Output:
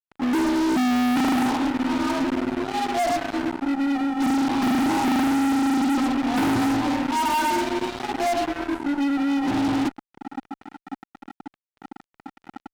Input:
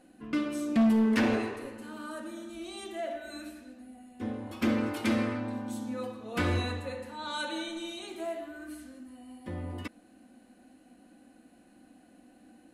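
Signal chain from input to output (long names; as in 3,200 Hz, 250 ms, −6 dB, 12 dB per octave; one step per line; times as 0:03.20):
frequency shifter +26 Hz
pair of resonant band-passes 480 Hz, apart 1.6 octaves
fuzz pedal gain 56 dB, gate −56 dBFS
level −6.5 dB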